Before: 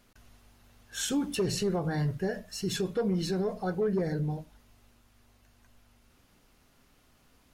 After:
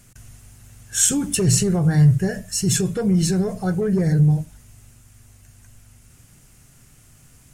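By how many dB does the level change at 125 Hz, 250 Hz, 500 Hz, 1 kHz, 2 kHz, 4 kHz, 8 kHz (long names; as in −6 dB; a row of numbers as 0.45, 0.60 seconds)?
+16.0, +11.0, +5.0, +4.0, +7.5, +8.0, +18.0 decibels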